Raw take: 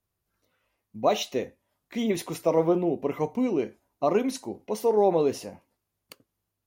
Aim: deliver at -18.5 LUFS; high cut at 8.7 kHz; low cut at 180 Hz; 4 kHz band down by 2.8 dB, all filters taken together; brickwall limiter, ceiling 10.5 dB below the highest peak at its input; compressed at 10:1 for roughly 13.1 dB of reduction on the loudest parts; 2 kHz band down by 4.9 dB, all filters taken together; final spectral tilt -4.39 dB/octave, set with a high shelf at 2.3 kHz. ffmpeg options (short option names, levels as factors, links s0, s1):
-af "highpass=180,lowpass=8700,equalizer=f=2000:t=o:g=-8,highshelf=f=2300:g=7.5,equalizer=f=4000:t=o:g=-8,acompressor=threshold=0.0282:ratio=10,volume=11.9,alimiter=limit=0.422:level=0:latency=1"